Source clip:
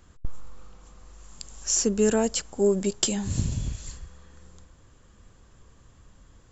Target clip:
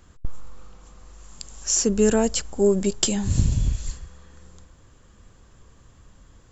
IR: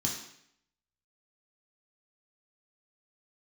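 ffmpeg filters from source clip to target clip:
-filter_complex "[0:a]asettb=1/sr,asplit=3[s0][s1][s2];[s0]atrim=end=1.894[s3];[s1]atrim=start=1.89:end=3.93,asetpts=PTS-STARTPTS,afade=t=in:d=0.004:c=qsin,afade=t=out:st=2.036:d=0.004:c=qsin,lowshelf=f=76:g=10[s4];[s2]atrim=start=3.926[s5];[s3][s4]acrossfade=d=0.004:c1=hsin:c2=qsin[s6];[s6][s5]acrossfade=d=0.004:c1=qsin:c2=hsin,volume=1.33"

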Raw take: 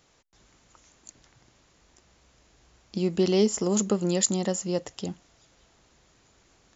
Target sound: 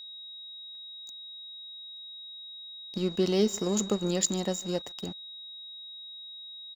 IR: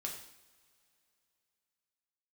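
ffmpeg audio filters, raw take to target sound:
-af "aecho=1:1:146|292|438:0.0891|0.0428|0.0205,aeval=exprs='sgn(val(0))*max(abs(val(0))-0.00794,0)':c=same,aeval=exprs='val(0)+0.0112*sin(2*PI*3800*n/s)':c=same,volume=0.75"

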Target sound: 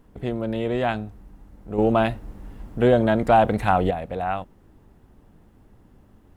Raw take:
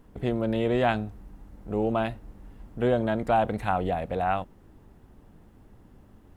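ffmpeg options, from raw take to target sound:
-filter_complex "[0:a]asettb=1/sr,asplit=3[s0][s1][s2];[s0]atrim=end=1.784[s3];[s1]atrim=start=1.78:end=3.91,asetpts=PTS-STARTPTS,afade=t=in:d=0.004:c=qsin,afade=t=out:st=2.126:d=0.004:c=qsin,acontrast=82[s4];[s2]atrim=start=3.906[s5];[s3][s4]acrossfade=d=0.004:c1=hsin:c2=qsin[s6];[s6][s5]acrossfade=d=0.004:c1=qsin:c2=hsin"

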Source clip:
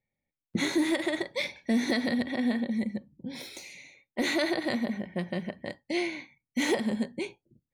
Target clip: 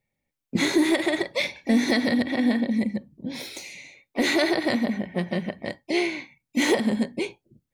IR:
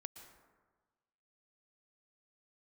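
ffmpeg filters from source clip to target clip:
-filter_complex "[0:a]acontrast=39,asplit=2[s0][s1];[s1]asetrate=52444,aresample=44100,atempo=0.840896,volume=0.224[s2];[s0][s2]amix=inputs=2:normalize=0"

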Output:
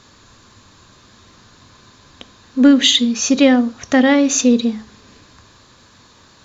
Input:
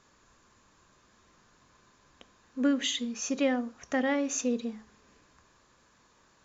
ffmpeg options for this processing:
-af "equalizer=f=100:t=o:w=0.67:g=10,equalizer=f=250:t=o:w=0.67:g=4,equalizer=f=4000:t=o:w=0.67:g=9,acontrast=85,volume=2"

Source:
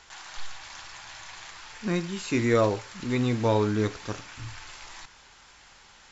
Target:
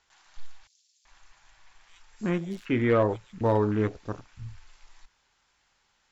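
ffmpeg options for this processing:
-filter_complex "[0:a]afwtdn=0.0178,volume=5.62,asoftclip=hard,volume=0.178,asettb=1/sr,asplit=3[s0][s1][s2];[s0]atrim=end=0.674[s3];[s1]atrim=start=0.67:end=3.41,asetpts=PTS-STARTPTS,afade=t=in:d=0.004:c=qsin,afade=t=out:st=2.736:d=0.004:c=qsin,acrossover=split=4200[s4][s5];[s4]adelay=380[s6];[s6][s5]amix=inputs=2:normalize=0,atrim=end_sample=120834[s7];[s2]atrim=start=3.406[s8];[s3][s7]acrossfade=d=0.004:c1=hsin:c2=qsin[s9];[s9][s8]acrossfade=d=0.004:c1=qsin:c2=hsin"

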